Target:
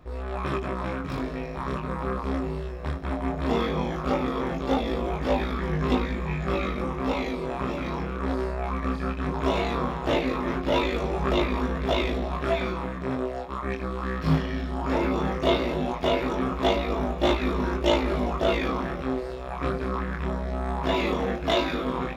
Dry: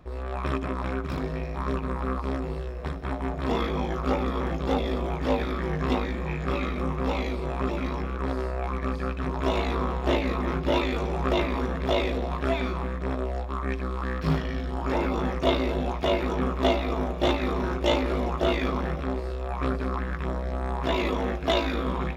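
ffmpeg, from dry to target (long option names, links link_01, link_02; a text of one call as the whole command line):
ffmpeg -i in.wav -af "flanger=delay=20:depth=6.6:speed=0.17,volume=4dB" out.wav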